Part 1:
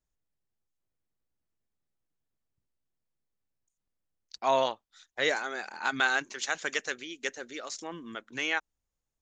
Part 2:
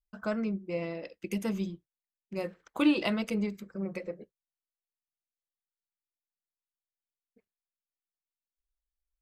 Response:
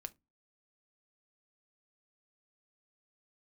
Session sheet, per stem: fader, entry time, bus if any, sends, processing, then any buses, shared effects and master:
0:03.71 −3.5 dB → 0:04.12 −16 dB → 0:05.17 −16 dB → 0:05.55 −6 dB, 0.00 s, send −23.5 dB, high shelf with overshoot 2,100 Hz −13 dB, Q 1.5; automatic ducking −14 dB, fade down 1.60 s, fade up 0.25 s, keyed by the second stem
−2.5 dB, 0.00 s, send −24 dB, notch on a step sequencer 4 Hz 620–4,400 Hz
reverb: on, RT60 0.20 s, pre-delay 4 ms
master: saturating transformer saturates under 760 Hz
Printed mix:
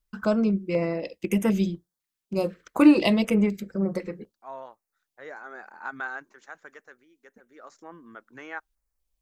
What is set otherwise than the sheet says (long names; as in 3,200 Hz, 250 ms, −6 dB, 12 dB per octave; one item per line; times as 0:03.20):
stem 2 −2.5 dB → +9.0 dB
master: missing saturating transformer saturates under 760 Hz